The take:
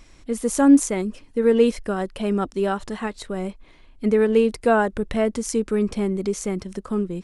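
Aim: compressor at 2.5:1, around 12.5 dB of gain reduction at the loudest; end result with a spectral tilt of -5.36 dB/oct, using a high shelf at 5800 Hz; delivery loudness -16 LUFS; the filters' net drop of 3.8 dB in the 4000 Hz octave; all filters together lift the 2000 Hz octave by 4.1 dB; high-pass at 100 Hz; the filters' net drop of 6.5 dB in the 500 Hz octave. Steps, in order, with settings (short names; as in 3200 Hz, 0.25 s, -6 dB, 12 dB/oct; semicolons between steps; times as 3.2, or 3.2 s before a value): HPF 100 Hz; bell 500 Hz -8 dB; bell 2000 Hz +8.5 dB; bell 4000 Hz -8 dB; high shelf 5800 Hz -5 dB; compressor 2.5:1, threshold -30 dBFS; gain +16 dB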